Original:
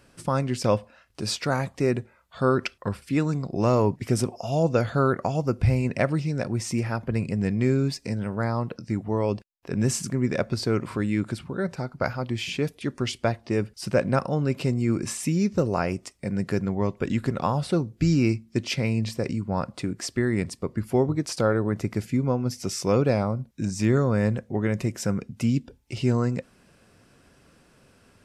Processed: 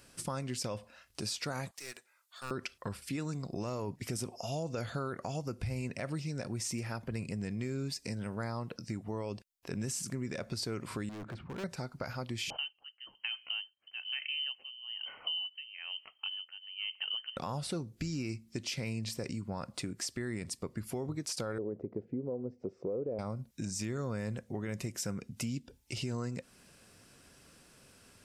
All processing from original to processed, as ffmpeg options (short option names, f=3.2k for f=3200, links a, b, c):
-filter_complex "[0:a]asettb=1/sr,asplit=3[a][b][c];[a]atrim=end=1.714[d];[b]atrim=start=1.71:end=2.51,asetpts=PTS-STARTPTS,afade=t=in:d=0.004:c=qsin,afade=t=out:st=0.796:d=0.004:c=qsin,highpass=1.4k,aeval=exprs='clip(val(0),-1,0.01)':c=same,equalizer=f=2.4k:t=o:w=2:g=-6[e];[c]atrim=start=2.506[f];[d][e]acrossfade=d=0.004:c1=hsin:c2=qsin[g];[g][f]acrossfade=d=0.004:c1=qsin:c2=hsin,asettb=1/sr,asplit=3[h][i][j];[h]atrim=end=11.094[k];[i]atrim=start=11.09:end=11.64,asetpts=PTS-STARTPTS,afade=t=in:d=0.004:c=qsin,afade=t=out:st=0.546:d=0.004:c=qsin,lowpass=1.5k,volume=33.5dB,asoftclip=hard,volume=-33.5dB[l];[j]atrim=start=11.636[m];[k][l]acrossfade=d=0.004:c1=hsin:c2=qsin[n];[n][m]acrossfade=d=0.004:c1=qsin:c2=hsin,asettb=1/sr,asplit=3[o][p][q];[o]atrim=end=12.504[r];[p]atrim=start=12.5:end=17.37,asetpts=PTS-STARTPTS,afade=t=in:d=0.004:c=qsin,afade=t=out:st=4.866:d=0.004:c=qsin,lowpass=f=2.7k:t=q:w=0.5098,lowpass=f=2.7k:t=q:w=0.6013,lowpass=f=2.7k:t=q:w=0.9,lowpass=f=2.7k:t=q:w=2.563,afreqshift=-3200,aeval=exprs='val(0)*pow(10,-25*(0.5-0.5*cos(2*PI*1.1*n/s))/20)':c=same[s];[q]atrim=start=17.366[t];[r][s]acrossfade=d=0.004:c1=hsin:c2=qsin[u];[u][t]acrossfade=d=0.004:c1=qsin:c2=hsin,asettb=1/sr,asplit=3[v][w][x];[v]atrim=end=21.584[y];[w]atrim=start=21.58:end=23.19,asetpts=PTS-STARTPTS,afade=t=in:d=0.004:c=qsin,afade=t=out:st=1.606:d=0.004:c=qsin,lowpass=f=470:t=q:w=2.8,lowshelf=f=160:g=-11.5[z];[x]atrim=start=23.186[aa];[y][z]acrossfade=d=0.004:c1=hsin:c2=qsin[ab];[ab][aa]acrossfade=d=0.004:c1=qsin:c2=hsin,highshelf=f=3.1k:g=11,alimiter=limit=-15.5dB:level=0:latency=1:release=37,acompressor=threshold=-32dB:ratio=2.5,volume=-5dB"